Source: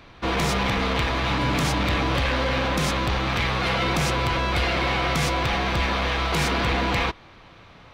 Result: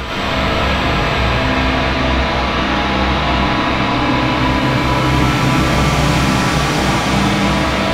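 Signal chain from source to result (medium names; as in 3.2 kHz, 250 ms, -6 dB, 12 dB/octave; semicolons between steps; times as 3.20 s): Paulstretch 8.8×, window 0.50 s, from 0.94 s; algorithmic reverb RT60 2.4 s, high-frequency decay 0.6×, pre-delay 60 ms, DRR -8 dB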